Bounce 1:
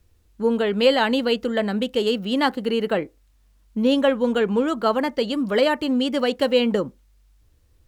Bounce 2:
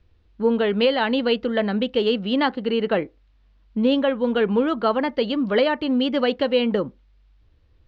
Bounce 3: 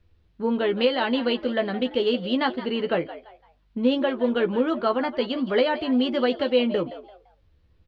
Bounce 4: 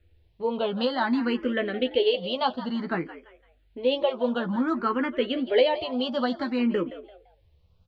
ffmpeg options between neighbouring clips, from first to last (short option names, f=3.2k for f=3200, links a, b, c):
-af "lowpass=f=4.2k:w=0.5412,lowpass=f=4.2k:w=1.3066,alimiter=limit=-10dB:level=0:latency=1:release=433,volume=1dB"
-filter_complex "[0:a]asplit=2[a][b];[b]adelay=12,volume=-6.5dB[c];[a][c]amix=inputs=2:normalize=0,asplit=4[d][e][f][g];[e]adelay=170,afreqshift=100,volume=-15dB[h];[f]adelay=340,afreqshift=200,volume=-25.2dB[i];[g]adelay=510,afreqshift=300,volume=-35.3dB[j];[d][h][i][j]amix=inputs=4:normalize=0,volume=-3.5dB"
-filter_complex "[0:a]asplit=2[a][b];[b]afreqshift=0.56[c];[a][c]amix=inputs=2:normalize=1,volume=1.5dB"